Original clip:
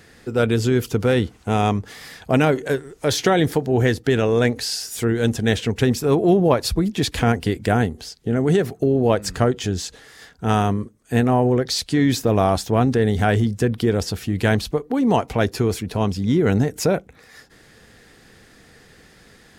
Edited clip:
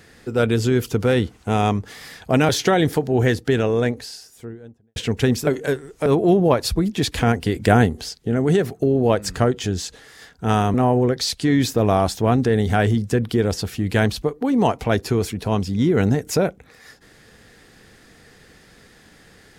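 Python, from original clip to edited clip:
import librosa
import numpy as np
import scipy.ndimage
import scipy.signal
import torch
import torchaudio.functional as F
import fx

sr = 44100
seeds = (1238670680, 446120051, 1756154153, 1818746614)

y = fx.studio_fade_out(x, sr, start_s=3.93, length_s=1.62)
y = fx.edit(y, sr, fx.move(start_s=2.49, length_s=0.59, to_s=6.06),
    fx.clip_gain(start_s=7.54, length_s=0.64, db=4.0),
    fx.cut(start_s=10.74, length_s=0.49), tone=tone)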